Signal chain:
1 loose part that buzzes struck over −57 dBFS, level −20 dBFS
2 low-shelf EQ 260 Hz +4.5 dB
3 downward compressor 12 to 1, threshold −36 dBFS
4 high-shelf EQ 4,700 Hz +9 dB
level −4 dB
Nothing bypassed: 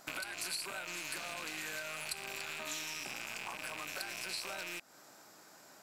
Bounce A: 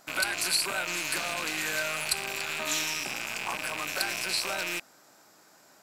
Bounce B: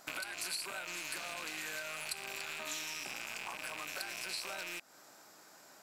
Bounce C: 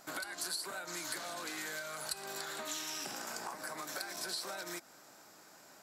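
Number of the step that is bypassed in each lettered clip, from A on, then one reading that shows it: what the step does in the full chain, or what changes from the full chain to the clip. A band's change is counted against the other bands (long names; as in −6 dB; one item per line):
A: 3, average gain reduction 8.5 dB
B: 2, 125 Hz band −3.0 dB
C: 1, 2 kHz band −4.5 dB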